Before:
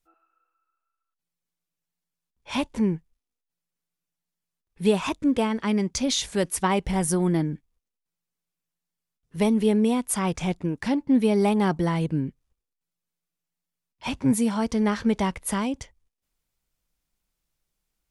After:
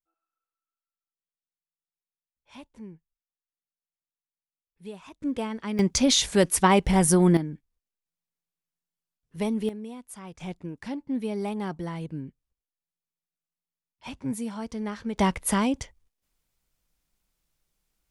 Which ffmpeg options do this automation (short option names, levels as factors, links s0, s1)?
-af "asetnsamples=n=441:p=0,asendcmd='5.21 volume volume -7dB;5.79 volume volume 4dB;7.37 volume volume -6dB;9.69 volume volume -17dB;10.4 volume volume -9.5dB;15.18 volume volume 2.5dB',volume=0.106"